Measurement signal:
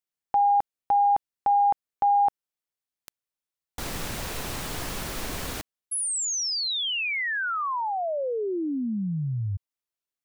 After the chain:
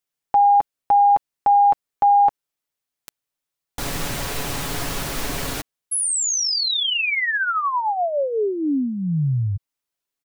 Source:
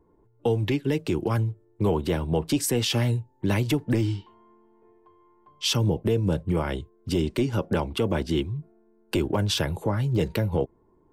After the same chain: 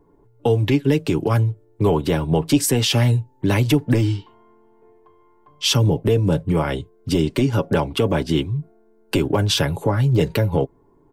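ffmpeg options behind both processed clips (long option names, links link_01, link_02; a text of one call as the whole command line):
ffmpeg -i in.wav -af "aecho=1:1:7.1:0.39,volume=5.5dB" out.wav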